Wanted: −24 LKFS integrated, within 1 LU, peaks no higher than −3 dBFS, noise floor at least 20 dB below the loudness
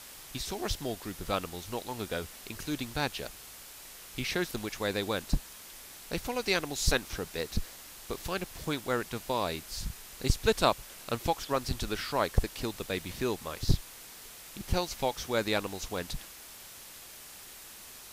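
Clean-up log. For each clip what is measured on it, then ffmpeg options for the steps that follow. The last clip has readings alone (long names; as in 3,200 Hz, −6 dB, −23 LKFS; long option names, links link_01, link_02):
background noise floor −49 dBFS; target noise floor −54 dBFS; integrated loudness −33.5 LKFS; sample peak −10.0 dBFS; target loudness −24.0 LKFS
→ -af "afftdn=noise_reduction=6:noise_floor=-49"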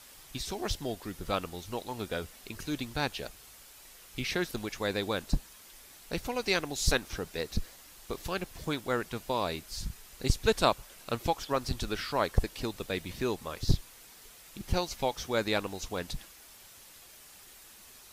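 background noise floor −54 dBFS; integrated loudness −33.5 LKFS; sample peak −10.0 dBFS; target loudness −24.0 LKFS
→ -af "volume=9.5dB,alimiter=limit=-3dB:level=0:latency=1"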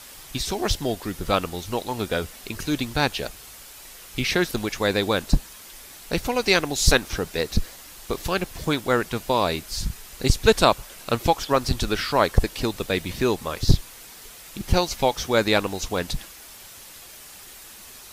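integrated loudness −24.0 LKFS; sample peak −3.0 dBFS; background noise floor −44 dBFS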